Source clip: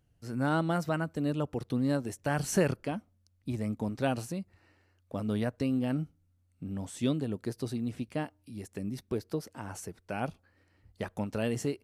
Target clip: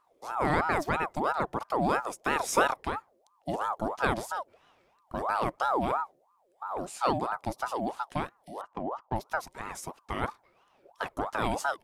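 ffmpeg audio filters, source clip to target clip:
-filter_complex "[0:a]asettb=1/sr,asplit=3[a][b][c];[a]atrim=end=8.614[d];[b]atrim=start=8.61:end=9.16,asetpts=PTS-STARTPTS,afade=t=in:d=0.004:c=qsin,afade=t=out:st=0.546:d=0.004:c=qsin,adynamicsmooth=sensitivity=3.5:basefreq=1.3k[e];[c]atrim=start=9.156[f];[d][e]acrossfade=d=0.004:c1=hsin:c2=qsin[g];[g][f]acrossfade=d=0.004:c1=qsin:c2=hsin,aeval=exprs='val(0)*sin(2*PI*780*n/s+780*0.45/3*sin(2*PI*3*n/s))':c=same,volume=4.5dB"

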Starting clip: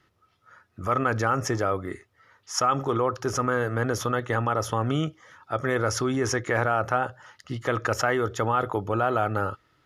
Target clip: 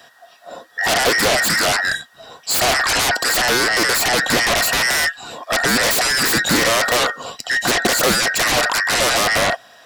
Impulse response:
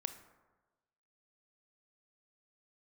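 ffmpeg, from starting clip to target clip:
-filter_complex "[0:a]afftfilt=real='real(if(between(b,1,1012),(2*floor((b-1)/92)+1)*92-b,b),0)':imag='imag(if(between(b,1,1012),(2*floor((b-1)/92)+1)*92-b,b),0)*if(between(b,1,1012),-1,1)':win_size=2048:overlap=0.75,equalizer=f=125:t=o:w=1:g=7,equalizer=f=250:t=o:w=1:g=10,equalizer=f=500:t=o:w=1:g=9,equalizer=f=2k:t=o:w=1:g=-7,acrossover=split=890[a][b];[b]aeval=exprs='0.188*sin(PI/2*10*val(0)/0.188)':c=same[c];[a][c]amix=inputs=2:normalize=0"

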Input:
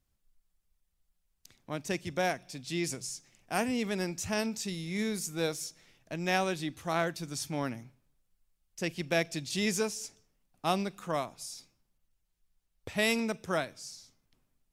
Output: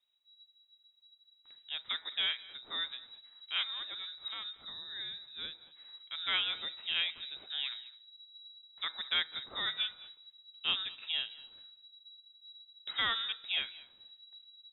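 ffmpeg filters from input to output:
-filter_complex "[0:a]asettb=1/sr,asplit=3[a][b][c];[a]atrim=end=3.634[d];[b]atrim=start=3.63:end=5.67,asetpts=PTS-STARTPTS,afade=t=in:d=0.004:c=qsin,afade=t=out:st=2.036:d=0.004:c=qsin,equalizer=f=890:w=0.49:g=-13.5[e];[c]atrim=start=5.666[f];[d][e]acrossfade=d=0.004:c1=hsin:c2=qsin[g];[g][f]acrossfade=d=0.004:c1=qsin:c2=hsin,aecho=1:1:210:0.0891,asubboost=boost=9.5:cutoff=55,lowpass=f=3.3k:t=q:w=0.5098,lowpass=f=3.3k:t=q:w=0.6013,lowpass=f=3.3k:t=q:w=0.9,lowpass=f=3.3k:t=q:w=2.563,afreqshift=-3900,bandreject=f=161.7:t=h:w=4,bandreject=f=323.4:t=h:w=4,bandreject=f=485.1:t=h:w=4,bandreject=f=646.8:t=h:w=4,bandreject=f=808.5:t=h:w=4,bandreject=f=970.2:t=h:w=4,bandreject=f=1.1319k:t=h:w=4,bandreject=f=1.2936k:t=h:w=4,bandreject=f=1.4553k:t=h:w=4,bandreject=f=1.617k:t=h:w=4,bandreject=f=1.7787k:t=h:w=4,bandreject=f=1.9404k:t=h:w=4,bandreject=f=2.1021k:t=h:w=4,bandreject=f=2.2638k:t=h:w=4,bandreject=f=2.4255k:t=h:w=4,volume=-2.5dB"

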